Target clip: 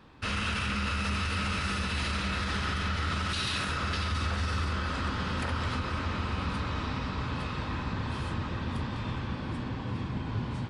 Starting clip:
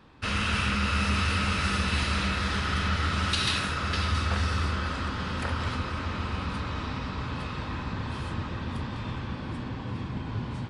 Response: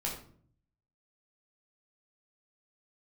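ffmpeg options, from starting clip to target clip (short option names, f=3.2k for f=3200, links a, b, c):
-af "alimiter=limit=-22dB:level=0:latency=1:release=42"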